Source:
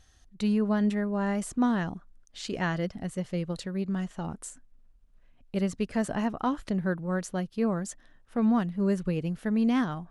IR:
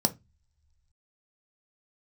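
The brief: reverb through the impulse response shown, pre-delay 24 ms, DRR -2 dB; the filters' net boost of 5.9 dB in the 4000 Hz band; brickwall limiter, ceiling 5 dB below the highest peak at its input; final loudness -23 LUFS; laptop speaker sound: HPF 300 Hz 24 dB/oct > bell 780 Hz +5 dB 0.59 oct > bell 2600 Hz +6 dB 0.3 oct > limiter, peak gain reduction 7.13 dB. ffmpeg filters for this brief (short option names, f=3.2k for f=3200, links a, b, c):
-filter_complex "[0:a]equalizer=f=4k:t=o:g=6,alimiter=limit=-20.5dB:level=0:latency=1,asplit=2[a][b];[1:a]atrim=start_sample=2205,adelay=24[c];[b][c]afir=irnorm=-1:irlink=0,volume=-6.5dB[d];[a][d]amix=inputs=2:normalize=0,highpass=f=300:w=0.5412,highpass=f=300:w=1.3066,equalizer=f=780:t=o:w=0.59:g=5,equalizer=f=2.6k:t=o:w=0.3:g=6,volume=5.5dB,alimiter=limit=-12dB:level=0:latency=1"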